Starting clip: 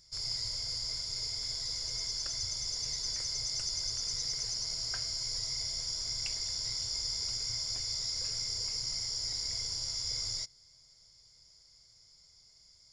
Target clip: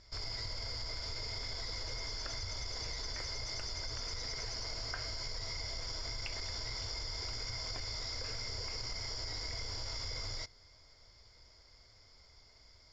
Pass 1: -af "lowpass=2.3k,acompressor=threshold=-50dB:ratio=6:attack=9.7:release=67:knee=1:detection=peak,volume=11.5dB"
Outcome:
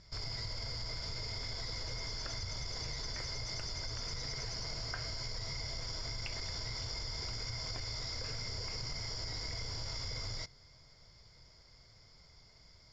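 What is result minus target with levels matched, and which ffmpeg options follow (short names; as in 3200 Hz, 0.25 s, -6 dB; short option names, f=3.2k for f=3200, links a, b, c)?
125 Hz band +3.5 dB
-af "lowpass=2.3k,equalizer=f=150:t=o:w=0.6:g=-14,acompressor=threshold=-50dB:ratio=6:attack=9.7:release=67:knee=1:detection=peak,volume=11.5dB"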